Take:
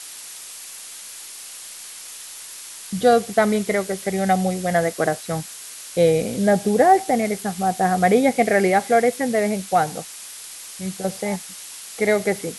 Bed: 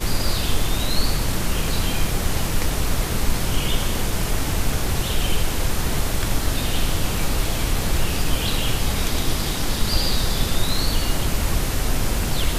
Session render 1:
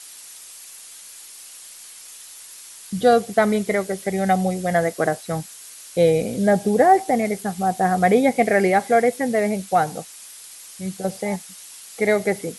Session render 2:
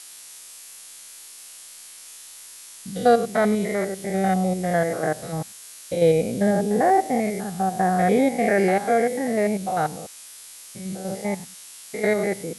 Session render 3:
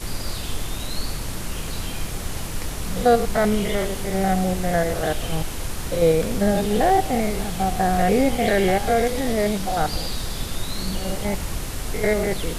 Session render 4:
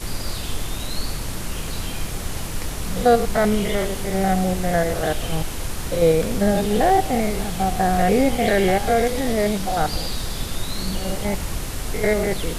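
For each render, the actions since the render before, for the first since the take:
denoiser 6 dB, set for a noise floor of -38 dBFS
stepped spectrum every 0.1 s
add bed -7 dB
gain +1 dB

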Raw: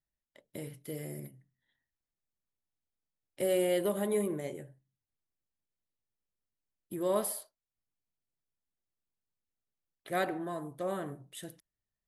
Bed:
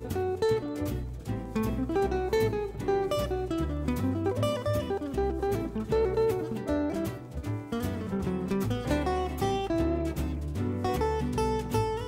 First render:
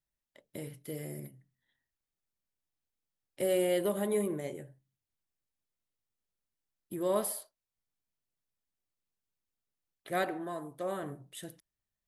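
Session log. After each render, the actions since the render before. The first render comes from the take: 10.23–11.03 low shelf 130 Hz -10.5 dB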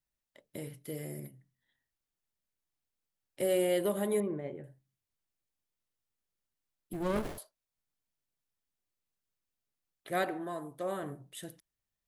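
4.2–4.64 air absorption 490 m; 6.93–7.38 running maximum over 33 samples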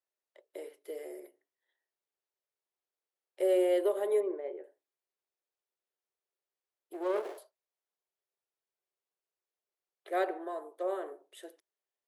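Chebyshev high-pass 370 Hz, order 5; tilt -3 dB/oct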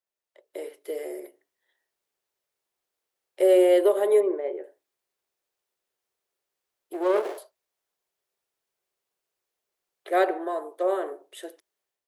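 AGC gain up to 9 dB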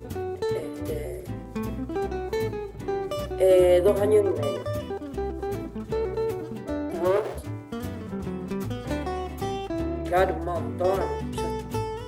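add bed -1.5 dB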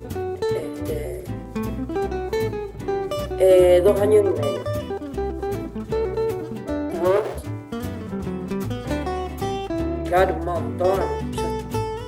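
gain +4 dB

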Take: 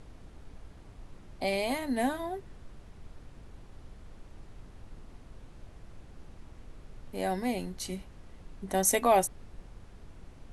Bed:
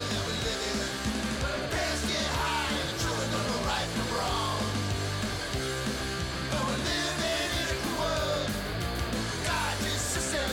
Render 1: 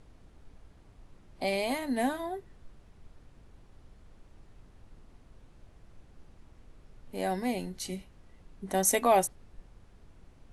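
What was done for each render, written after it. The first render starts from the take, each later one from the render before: noise print and reduce 6 dB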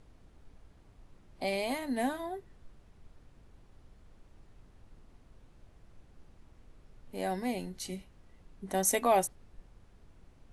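gain -2.5 dB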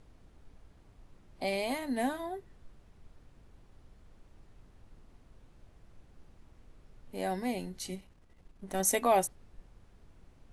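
7.95–8.8 half-wave gain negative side -7 dB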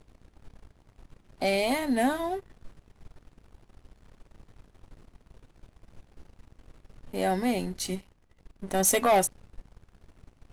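sample leveller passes 2

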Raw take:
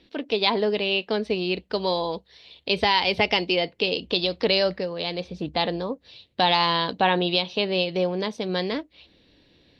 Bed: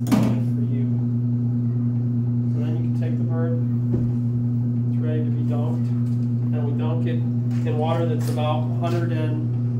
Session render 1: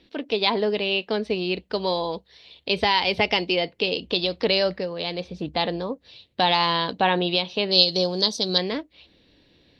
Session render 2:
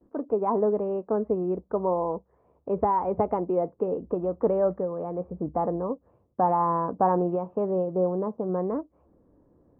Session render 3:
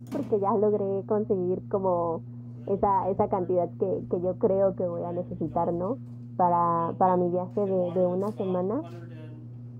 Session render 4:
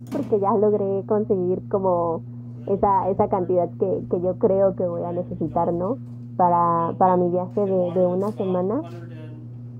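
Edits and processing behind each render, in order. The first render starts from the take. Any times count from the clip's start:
7.71–8.58 resonant high shelf 3200 Hz +11 dB, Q 3
gate with hold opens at -51 dBFS; elliptic low-pass 1200 Hz, stop band 70 dB
add bed -19 dB
gain +5 dB

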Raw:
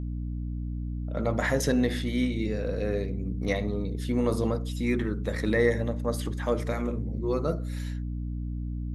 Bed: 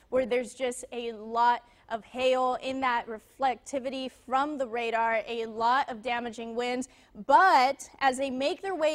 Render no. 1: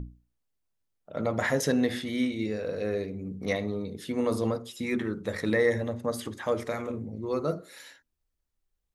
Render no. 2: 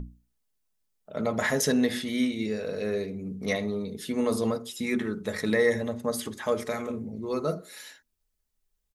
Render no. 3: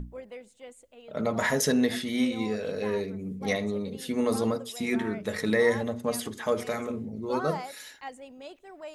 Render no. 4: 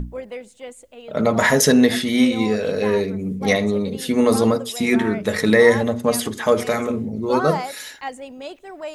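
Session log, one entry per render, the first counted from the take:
notches 60/120/180/240/300/360 Hz
high shelf 4200 Hz +6.5 dB; comb 4.7 ms, depth 36%
add bed -15.5 dB
gain +10 dB

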